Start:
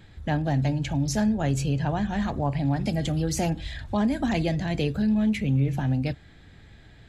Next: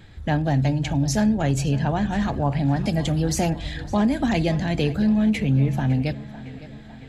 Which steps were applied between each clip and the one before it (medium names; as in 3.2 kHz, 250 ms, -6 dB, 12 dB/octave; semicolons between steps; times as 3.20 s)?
tape echo 557 ms, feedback 64%, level -15 dB, low-pass 4.3 kHz; trim +3.5 dB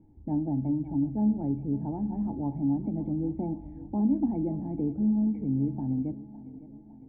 cascade formant filter u; distance through air 270 m; feedback comb 210 Hz, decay 0.76 s, harmonics all, mix 60%; trim +8.5 dB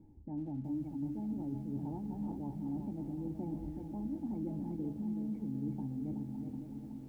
band-stop 680 Hz, Q 12; reverse; compression 16:1, threshold -35 dBFS, peak gain reduction 15.5 dB; reverse; bit-crushed delay 374 ms, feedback 55%, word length 11-bit, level -6.5 dB; trim -1 dB